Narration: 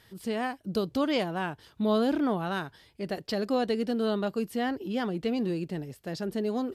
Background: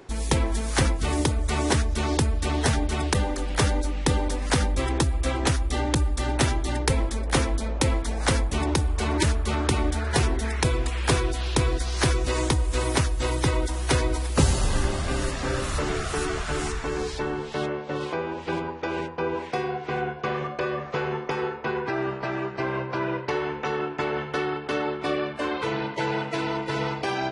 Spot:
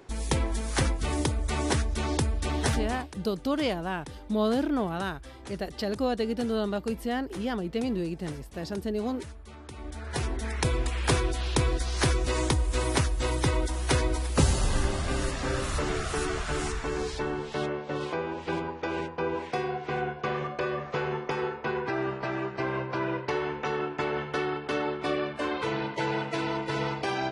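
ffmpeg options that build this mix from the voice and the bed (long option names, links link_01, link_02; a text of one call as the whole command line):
ffmpeg -i stem1.wav -i stem2.wav -filter_complex "[0:a]adelay=2500,volume=-0.5dB[link_01];[1:a]volume=14.5dB,afade=type=out:start_time=2.8:duration=0.28:silence=0.141254,afade=type=in:start_time=9.72:duration=1.09:silence=0.11885[link_02];[link_01][link_02]amix=inputs=2:normalize=0" out.wav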